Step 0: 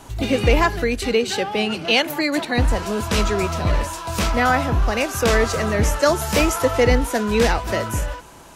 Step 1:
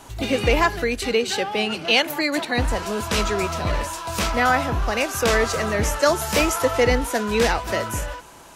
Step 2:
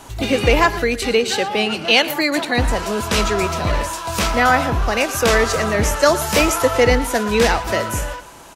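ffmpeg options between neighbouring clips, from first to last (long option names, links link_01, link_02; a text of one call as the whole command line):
ffmpeg -i in.wav -af "lowshelf=frequency=330:gain=-5.5" out.wav
ffmpeg -i in.wav -af "aecho=1:1:115:0.15,volume=4dB" out.wav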